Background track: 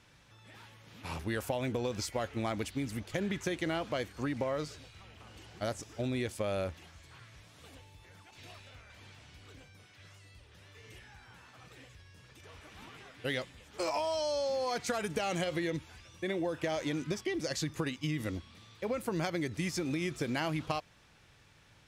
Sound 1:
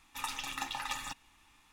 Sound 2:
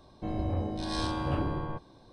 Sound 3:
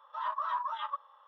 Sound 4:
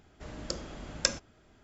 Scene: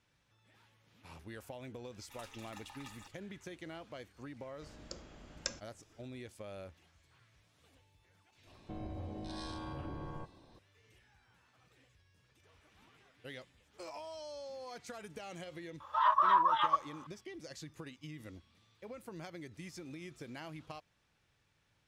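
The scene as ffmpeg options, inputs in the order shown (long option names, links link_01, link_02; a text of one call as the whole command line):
ffmpeg -i bed.wav -i cue0.wav -i cue1.wav -i cue2.wav -i cue3.wav -filter_complex "[0:a]volume=-13.5dB[link_01];[2:a]acompressor=threshold=-34dB:ratio=6:attack=3.2:release=140:knee=1:detection=peak[link_02];[3:a]acontrast=88[link_03];[1:a]atrim=end=1.72,asetpts=PTS-STARTPTS,volume=-15dB,afade=type=in:duration=0.004:curve=hsin,afade=type=out:start_time=1.716:duration=0.004:curve=hsin,adelay=1950[link_04];[4:a]atrim=end=1.63,asetpts=PTS-STARTPTS,volume=-11.5dB,afade=type=in:duration=0.004:curve=hsin,afade=type=out:start_time=1.626:duration=0.004:curve=hsin,adelay=194481S[link_05];[link_02]atrim=end=2.12,asetpts=PTS-STARTPTS,volume=-5dB,afade=type=in:duration=0.004:curve=hsin,afade=type=out:start_time=2.116:duration=0.004:curve=hsin,adelay=8470[link_06];[link_03]atrim=end=1.27,asetpts=PTS-STARTPTS,volume=-0.5dB,afade=type=in:duration=0.004:curve=hsin,afade=type=out:start_time=1.266:duration=0.004:curve=hsin,adelay=15800[link_07];[link_01][link_04][link_05][link_06][link_07]amix=inputs=5:normalize=0" out.wav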